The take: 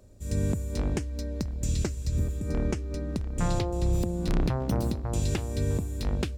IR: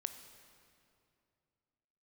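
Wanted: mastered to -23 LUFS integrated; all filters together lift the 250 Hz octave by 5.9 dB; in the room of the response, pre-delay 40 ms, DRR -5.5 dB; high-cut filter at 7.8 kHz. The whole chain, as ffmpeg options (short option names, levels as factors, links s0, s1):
-filter_complex "[0:a]lowpass=7800,equalizer=f=250:t=o:g=8,asplit=2[s0][s1];[1:a]atrim=start_sample=2205,adelay=40[s2];[s1][s2]afir=irnorm=-1:irlink=0,volume=2.37[s3];[s0][s3]amix=inputs=2:normalize=0,volume=0.75"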